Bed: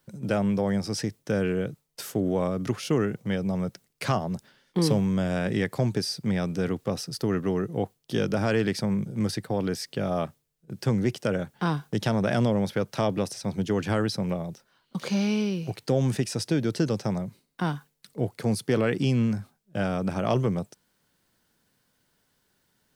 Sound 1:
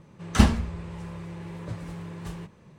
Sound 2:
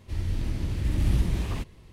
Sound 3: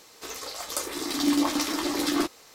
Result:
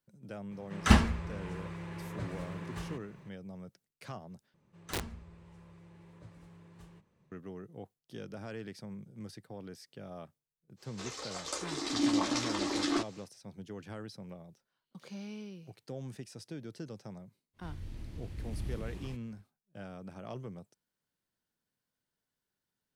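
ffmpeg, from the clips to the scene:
ffmpeg -i bed.wav -i cue0.wav -i cue1.wav -i cue2.wav -filter_complex "[1:a]asplit=2[link_01][link_02];[0:a]volume=-18.5dB[link_03];[link_01]equalizer=frequency=1700:width_type=o:width=2:gain=5.5[link_04];[link_02]aeval=exprs='(mod(3.35*val(0)+1,2)-1)/3.35':channel_layout=same[link_05];[3:a]lowpass=frequency=8000:width=0.5412,lowpass=frequency=8000:width=1.3066[link_06];[link_03]asplit=2[link_07][link_08];[link_07]atrim=end=4.544[link_09];[link_05]atrim=end=2.78,asetpts=PTS-STARTPTS,volume=-17.5dB[link_10];[link_08]atrim=start=7.316[link_11];[link_04]atrim=end=2.78,asetpts=PTS-STARTPTS,volume=-4.5dB,afade=type=in:duration=0.004:curve=hsin,afade=type=out:start_time=2.776:duration=0.004:curve=hsin,adelay=510[link_12];[link_06]atrim=end=2.54,asetpts=PTS-STARTPTS,volume=-5.5dB,afade=type=in:duration=0.1,afade=type=out:start_time=2.44:duration=0.1,adelay=10760[link_13];[2:a]atrim=end=1.92,asetpts=PTS-STARTPTS,volume=-15dB,afade=type=in:duration=0.05,afade=type=out:start_time=1.87:duration=0.05,adelay=17530[link_14];[link_09][link_10]acrossfade=duration=0.004:curve1=hsin:curve2=hsin[link_15];[link_15][link_11]acrossfade=duration=0.004:curve1=hsin:curve2=hsin[link_16];[link_16][link_12][link_13][link_14]amix=inputs=4:normalize=0" out.wav

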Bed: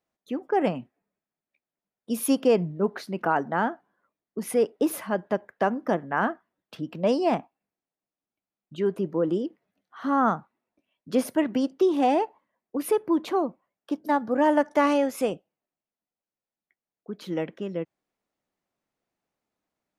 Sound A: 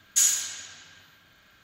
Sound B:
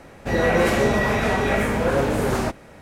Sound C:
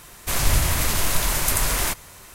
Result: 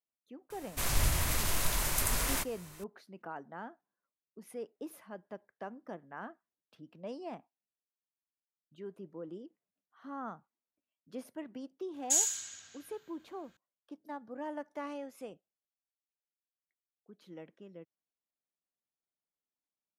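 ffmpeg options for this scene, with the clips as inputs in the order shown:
ffmpeg -i bed.wav -i cue0.wav -i cue1.wav -i cue2.wav -filter_complex "[0:a]volume=-19.5dB[link_01];[1:a]equalizer=frequency=7600:width_type=o:width=0.6:gain=7.5[link_02];[3:a]atrim=end=2.34,asetpts=PTS-STARTPTS,volume=-9.5dB,afade=type=in:duration=0.004:curve=hsin,afade=type=out:start_time=2.336:duration=0.004:curve=hsin,adelay=500[link_03];[link_02]atrim=end=1.63,asetpts=PTS-STARTPTS,volume=-12dB,afade=type=in:duration=0.004:curve=hsin,afade=type=out:start_time=1.626:duration=0.004:curve=hsin,adelay=11940[link_04];[link_01][link_03][link_04]amix=inputs=3:normalize=0" out.wav

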